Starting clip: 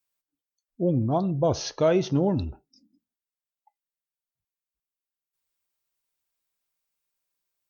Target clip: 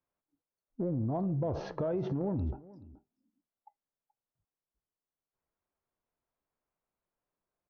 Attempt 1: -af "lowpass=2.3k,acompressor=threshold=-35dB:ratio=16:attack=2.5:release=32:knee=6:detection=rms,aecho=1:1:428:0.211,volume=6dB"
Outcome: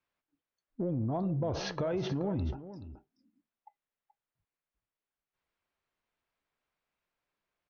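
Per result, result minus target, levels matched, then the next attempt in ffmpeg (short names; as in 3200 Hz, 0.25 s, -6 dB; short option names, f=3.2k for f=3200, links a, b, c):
2000 Hz band +8.0 dB; echo-to-direct +7 dB
-af "lowpass=1k,acompressor=threshold=-35dB:ratio=16:attack=2.5:release=32:knee=6:detection=rms,aecho=1:1:428:0.211,volume=6dB"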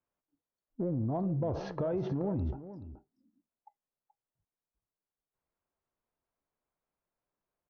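echo-to-direct +7 dB
-af "lowpass=1k,acompressor=threshold=-35dB:ratio=16:attack=2.5:release=32:knee=6:detection=rms,aecho=1:1:428:0.0944,volume=6dB"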